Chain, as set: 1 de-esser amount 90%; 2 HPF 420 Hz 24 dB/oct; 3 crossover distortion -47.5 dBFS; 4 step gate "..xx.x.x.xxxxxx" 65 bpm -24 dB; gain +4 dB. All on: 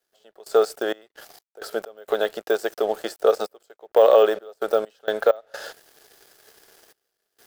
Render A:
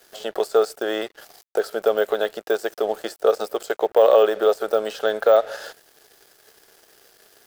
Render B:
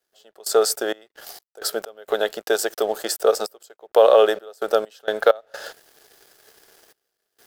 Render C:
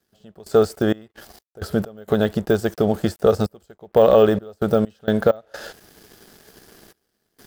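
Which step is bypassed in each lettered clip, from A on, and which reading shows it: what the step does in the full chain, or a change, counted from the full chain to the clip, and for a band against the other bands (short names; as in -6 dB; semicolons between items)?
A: 4, crest factor change -1.5 dB; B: 1, momentary loudness spread change +3 LU; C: 2, 250 Hz band +14.5 dB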